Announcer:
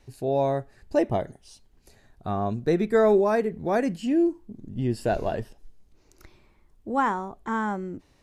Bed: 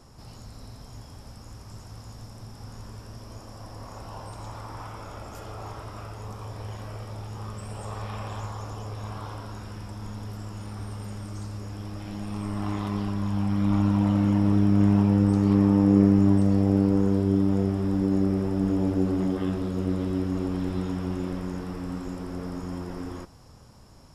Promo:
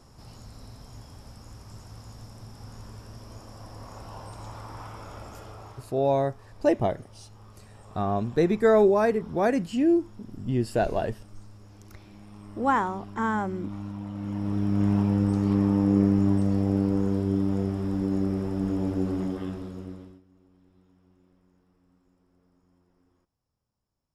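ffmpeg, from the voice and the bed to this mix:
ffmpeg -i stem1.wav -i stem2.wav -filter_complex "[0:a]adelay=5700,volume=0.5dB[link_01];[1:a]volume=9dB,afade=type=out:start_time=5.25:duration=0.71:silence=0.251189,afade=type=in:start_time=14.13:duration=0.79:silence=0.281838,afade=type=out:start_time=19.15:duration=1.06:silence=0.0334965[link_02];[link_01][link_02]amix=inputs=2:normalize=0" out.wav

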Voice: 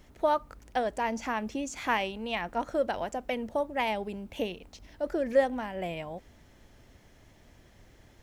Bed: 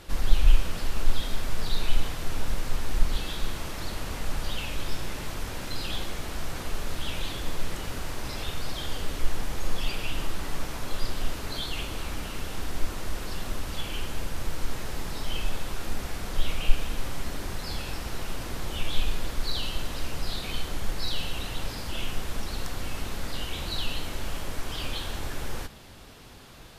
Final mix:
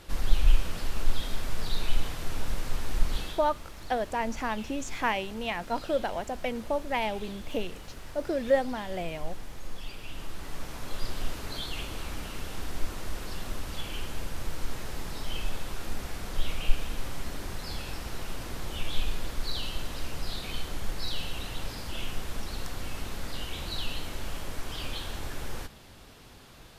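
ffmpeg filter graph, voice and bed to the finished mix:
ffmpeg -i stem1.wav -i stem2.wav -filter_complex "[0:a]adelay=3150,volume=0dB[link_01];[1:a]volume=5.5dB,afade=type=out:start_time=3.21:duration=0.23:silence=0.375837,afade=type=in:start_time=10:duration=1.17:silence=0.398107[link_02];[link_01][link_02]amix=inputs=2:normalize=0" out.wav

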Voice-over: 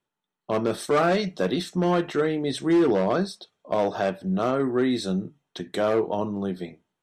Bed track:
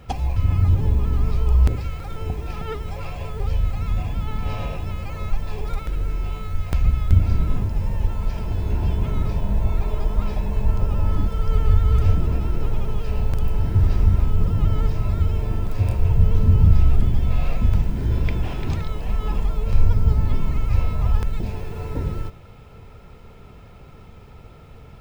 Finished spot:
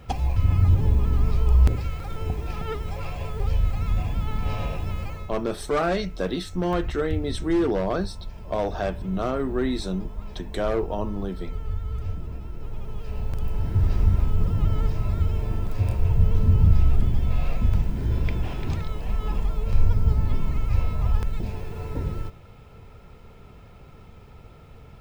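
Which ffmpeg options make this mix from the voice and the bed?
ffmpeg -i stem1.wav -i stem2.wav -filter_complex "[0:a]adelay=4800,volume=-2.5dB[link_01];[1:a]volume=9dB,afade=type=out:start_time=5.03:duration=0.28:silence=0.251189,afade=type=in:start_time=12.56:duration=1.46:silence=0.316228[link_02];[link_01][link_02]amix=inputs=2:normalize=0" out.wav

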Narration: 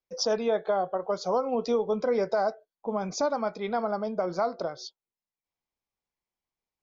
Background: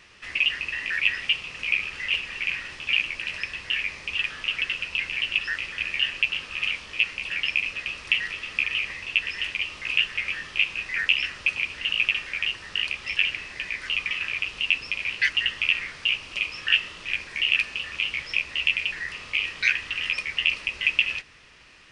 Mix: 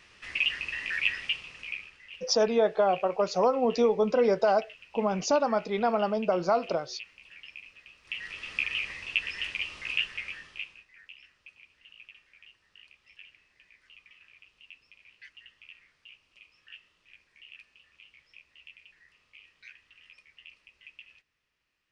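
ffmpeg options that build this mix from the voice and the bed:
ffmpeg -i stem1.wav -i stem2.wav -filter_complex "[0:a]adelay=2100,volume=2.5dB[link_01];[1:a]volume=12dB,afade=type=out:start_time=1.04:duration=0.95:silence=0.141254,afade=type=in:start_time=8.02:duration=0.47:silence=0.149624,afade=type=out:start_time=9.81:duration=1.05:silence=0.0668344[link_02];[link_01][link_02]amix=inputs=2:normalize=0" out.wav

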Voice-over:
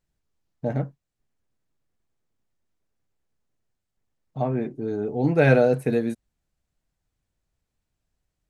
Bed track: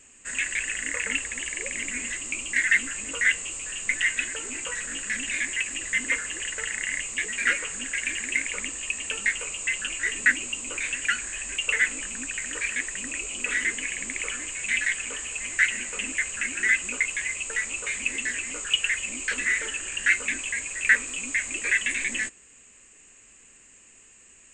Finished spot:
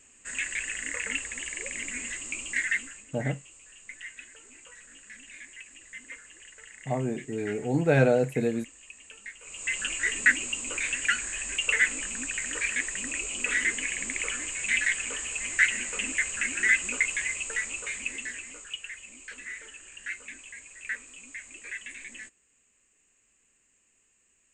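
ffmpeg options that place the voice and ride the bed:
ffmpeg -i stem1.wav -i stem2.wav -filter_complex "[0:a]adelay=2500,volume=-4dB[link_01];[1:a]volume=13.5dB,afade=type=out:start_time=2.53:duration=0.53:silence=0.199526,afade=type=in:start_time=9.41:duration=0.41:silence=0.133352,afade=type=out:start_time=17.14:duration=1.65:silence=0.188365[link_02];[link_01][link_02]amix=inputs=2:normalize=0" out.wav

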